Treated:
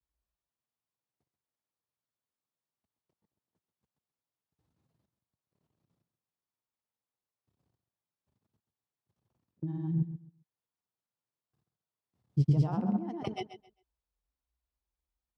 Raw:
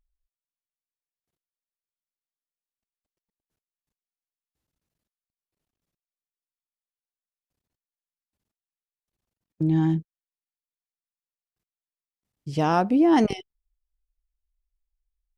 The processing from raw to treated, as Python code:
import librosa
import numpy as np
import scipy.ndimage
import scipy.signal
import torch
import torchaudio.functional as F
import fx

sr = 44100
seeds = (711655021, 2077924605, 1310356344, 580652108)

y = fx.over_compress(x, sr, threshold_db=-32.0, ratio=-1.0)
y = fx.graphic_eq_10(y, sr, hz=(125, 1000, 4000), db=(5, 5, 4))
y = fx.granulator(y, sr, seeds[0], grain_ms=100.0, per_s=20.0, spray_ms=100.0, spread_st=0)
y = scipy.signal.sosfilt(scipy.signal.butter(4, 71.0, 'highpass', fs=sr, output='sos'), y)
y = fx.tilt_shelf(y, sr, db=7.0, hz=1200.0)
y = fx.echo_feedback(y, sr, ms=133, feedback_pct=21, wet_db=-12.0)
y = y * 10.0 ** (-8.5 / 20.0)